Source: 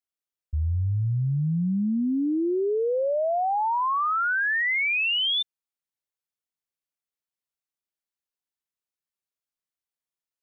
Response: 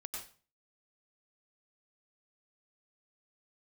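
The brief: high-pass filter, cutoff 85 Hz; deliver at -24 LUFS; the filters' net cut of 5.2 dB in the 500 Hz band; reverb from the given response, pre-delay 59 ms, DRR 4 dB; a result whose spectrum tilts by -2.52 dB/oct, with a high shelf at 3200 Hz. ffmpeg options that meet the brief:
-filter_complex "[0:a]highpass=85,equalizer=f=500:t=o:g=-7,highshelf=f=3.2k:g=5,asplit=2[a][b];[1:a]atrim=start_sample=2205,adelay=59[c];[b][c]afir=irnorm=-1:irlink=0,volume=-2dB[d];[a][d]amix=inputs=2:normalize=0,volume=-1dB"

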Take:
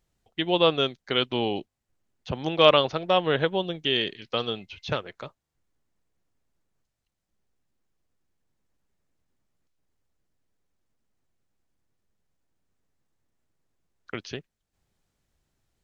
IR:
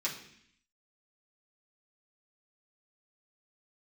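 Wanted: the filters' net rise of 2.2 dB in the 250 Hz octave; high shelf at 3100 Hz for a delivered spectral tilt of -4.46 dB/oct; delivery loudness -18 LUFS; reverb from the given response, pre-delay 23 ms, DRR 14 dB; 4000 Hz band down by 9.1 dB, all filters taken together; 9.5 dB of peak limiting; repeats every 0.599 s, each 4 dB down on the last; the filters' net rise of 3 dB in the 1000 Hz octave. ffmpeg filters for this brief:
-filter_complex "[0:a]equalizer=f=250:t=o:g=3,equalizer=f=1k:t=o:g=5,highshelf=f=3.1k:g=-8,equalizer=f=4k:t=o:g=-7.5,alimiter=limit=-12.5dB:level=0:latency=1,aecho=1:1:599|1198|1797|2396|2995|3594|4193|4792|5391:0.631|0.398|0.25|0.158|0.0994|0.0626|0.0394|0.0249|0.0157,asplit=2[a][b];[1:a]atrim=start_sample=2205,adelay=23[c];[b][c]afir=irnorm=-1:irlink=0,volume=-18.5dB[d];[a][d]amix=inputs=2:normalize=0,volume=9dB"

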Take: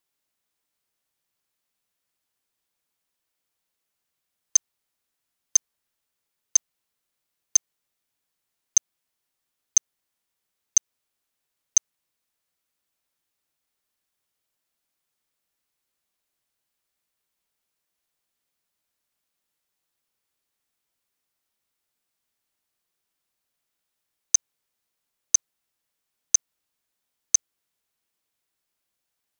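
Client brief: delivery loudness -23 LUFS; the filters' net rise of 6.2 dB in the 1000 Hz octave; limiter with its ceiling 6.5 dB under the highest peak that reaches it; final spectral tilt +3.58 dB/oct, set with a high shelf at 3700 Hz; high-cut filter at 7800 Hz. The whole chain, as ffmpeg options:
-af "lowpass=7.8k,equalizer=f=1k:t=o:g=7.5,highshelf=f=3.7k:g=3,volume=5.5dB,alimiter=limit=-7.5dB:level=0:latency=1"

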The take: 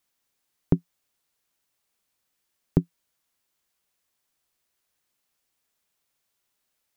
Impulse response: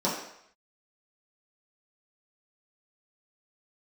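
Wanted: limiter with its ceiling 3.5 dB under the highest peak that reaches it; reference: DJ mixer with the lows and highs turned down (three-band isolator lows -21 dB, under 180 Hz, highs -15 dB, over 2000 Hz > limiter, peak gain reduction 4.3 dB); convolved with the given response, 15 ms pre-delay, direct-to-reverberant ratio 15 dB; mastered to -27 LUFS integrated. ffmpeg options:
-filter_complex "[0:a]alimiter=limit=-7.5dB:level=0:latency=1,asplit=2[a][b];[1:a]atrim=start_sample=2205,adelay=15[c];[b][c]afir=irnorm=-1:irlink=0,volume=-26.5dB[d];[a][d]amix=inputs=2:normalize=0,acrossover=split=180 2000:gain=0.0891 1 0.178[e][f][g];[e][f][g]amix=inputs=3:normalize=0,volume=12dB,alimiter=limit=-7dB:level=0:latency=1"

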